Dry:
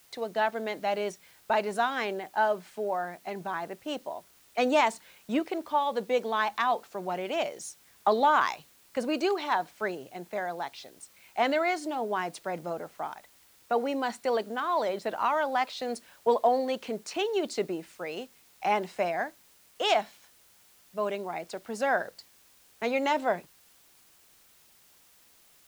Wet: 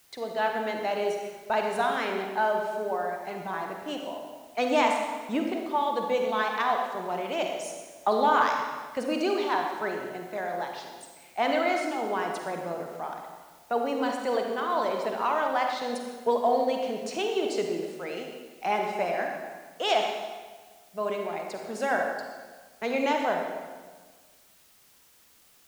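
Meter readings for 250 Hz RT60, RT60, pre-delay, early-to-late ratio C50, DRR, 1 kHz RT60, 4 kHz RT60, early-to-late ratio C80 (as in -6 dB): 1.5 s, 1.4 s, 38 ms, 2.5 dB, 2.0 dB, 1.4 s, 1.2 s, 4.5 dB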